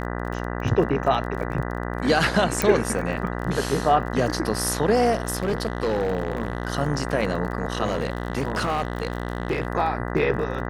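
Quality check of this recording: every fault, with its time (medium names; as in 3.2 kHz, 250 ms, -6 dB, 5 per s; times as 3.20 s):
buzz 60 Hz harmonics 33 -29 dBFS
crackle 23 per s -30 dBFS
2.62 s: pop
5.12–6.68 s: clipped -18.5 dBFS
7.84–9.67 s: clipped -19 dBFS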